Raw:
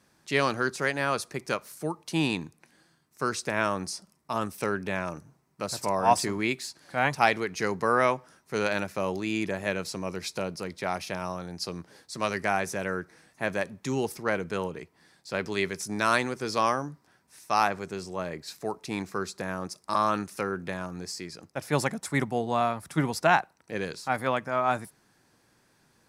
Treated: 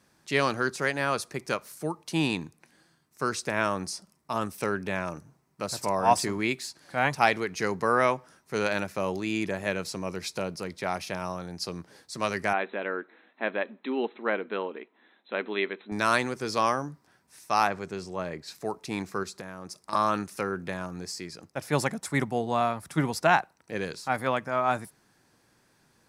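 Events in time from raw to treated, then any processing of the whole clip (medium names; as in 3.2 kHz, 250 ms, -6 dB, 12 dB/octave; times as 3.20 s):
12.53–15.92 s: brick-wall FIR band-pass 200–4100 Hz
17.67–18.55 s: treble shelf 9.1 kHz -8.5 dB
19.23–19.93 s: compression 5:1, threshold -35 dBFS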